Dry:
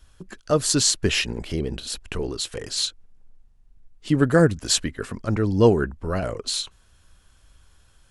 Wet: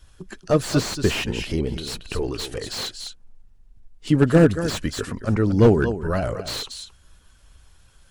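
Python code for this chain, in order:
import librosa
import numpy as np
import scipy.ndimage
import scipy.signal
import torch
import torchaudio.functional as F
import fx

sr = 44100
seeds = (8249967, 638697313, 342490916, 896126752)

y = fx.spec_quant(x, sr, step_db=15)
y = y + 10.0 ** (-12.0 / 20.0) * np.pad(y, (int(228 * sr / 1000.0), 0))[:len(y)]
y = fx.slew_limit(y, sr, full_power_hz=130.0)
y = y * 10.0 ** (2.5 / 20.0)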